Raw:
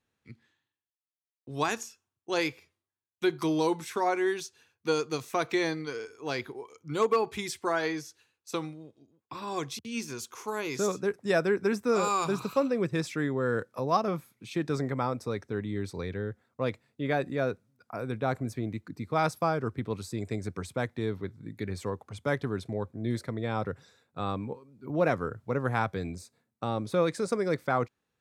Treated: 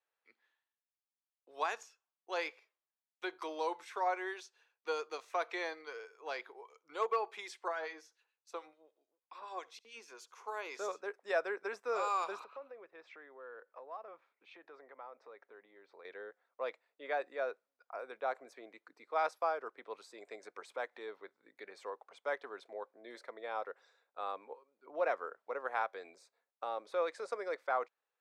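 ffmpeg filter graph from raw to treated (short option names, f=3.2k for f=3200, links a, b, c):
-filter_complex "[0:a]asettb=1/sr,asplit=3[a][b][c];[a]atrim=end=7.684[d];[b]atrim=start=7.68:end=10.47,asetpts=PTS-STARTPTS,afade=t=in:d=0.004:c=qsin,afade=t=out:st=2.786:d=0.004:c=qsin,acrossover=split=1500[e][f];[e]aeval=exprs='val(0)*(1-0.7/2+0.7/2*cos(2*PI*6.9*n/s))':c=same[g];[f]aeval=exprs='val(0)*(1-0.7/2-0.7/2*cos(2*PI*6.9*n/s))':c=same[h];[g][h]amix=inputs=2:normalize=0,aecho=1:1:70:0.0631,atrim=end_sample=123039[i];[c]atrim=start=10.466[j];[d][i]acrossfade=d=0.004:c1=hsin:c2=qsin[k];[k][j]acrossfade=d=0.004:c1=qsin:c2=hsin,asettb=1/sr,asplit=3[l][m][n];[l]atrim=end=12.444[o];[m]atrim=start=12.44:end=16.05,asetpts=PTS-STARTPTS,afade=t=in:d=0.004:c=qsin,afade=t=out:st=3.606:d=0.004:c=qsin,lowpass=2.7k,acompressor=threshold=-43dB:ratio=2.5:attack=3.2:release=140:knee=1:detection=peak[p];[n]atrim=start=16.046[q];[o][p]acrossfade=d=0.004:c1=hsin:c2=qsin[r];[r][q]acrossfade=d=0.004:c1=qsin:c2=hsin,asettb=1/sr,asplit=3[s][t][u];[s]atrim=end=20.434[v];[t]atrim=start=20.43:end=21.08,asetpts=PTS-STARTPTS,afade=t=in:d=0.004:c=qsin,afade=t=out:st=0.646:d=0.004:c=qsin,acompressor=mode=upward:threshold=-34dB:ratio=2.5:attack=3.2:release=140:knee=2.83:detection=peak,bandreject=f=660:w=14[w];[u]atrim=start=21.076[x];[v][w]acrossfade=d=0.004:c1=hsin:c2=qsin[y];[y][x]acrossfade=d=0.004:c1=qsin:c2=hsin,highpass=f=520:w=0.5412,highpass=f=520:w=1.3066,aemphasis=mode=reproduction:type=75fm,volume=-5dB"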